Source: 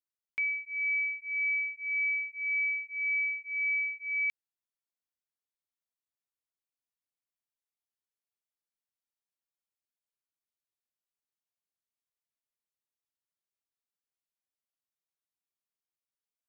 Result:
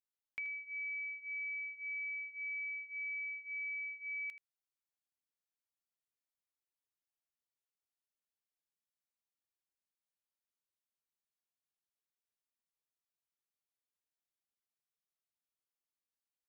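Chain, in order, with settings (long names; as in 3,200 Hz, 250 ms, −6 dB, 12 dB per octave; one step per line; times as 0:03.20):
downward compressor, threshold −34 dBFS, peak gain reduction 6 dB
on a send: single-tap delay 80 ms −13 dB
on the sum: level −5.5 dB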